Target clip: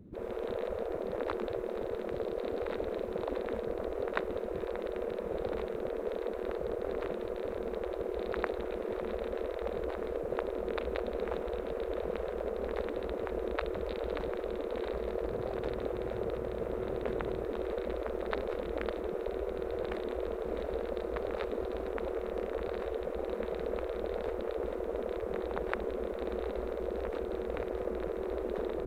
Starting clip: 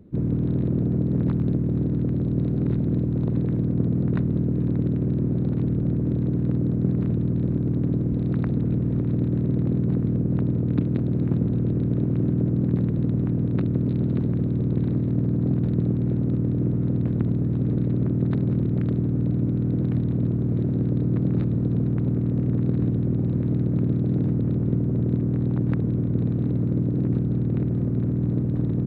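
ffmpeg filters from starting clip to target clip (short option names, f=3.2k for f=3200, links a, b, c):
-filter_complex "[0:a]asettb=1/sr,asplit=3[a][b][c];[a]atrim=end=15.284[d];[b]atrim=start=15.28:end=17.44,asetpts=PTS-STARTPTS,afade=t=in:d=0.004:c=qsin,afade=t=out:st=2.156:d=0.004:c=qsin,equalizer=f=75:w=0.95:g=-12.5[e];[c]atrim=start=17.436[f];[d][e]acrossfade=d=0.004:c1=hsin:c2=qsin[g];[g][f]acrossfade=d=0.004:c1=qsin:c2=hsin,afftfilt=real='re*lt(hypot(re,im),0.126)':imag='im*lt(hypot(re,im),0.126)':win_size=1024:overlap=0.75,dynaudnorm=f=130:g=3:m=12dB,volume=-5dB"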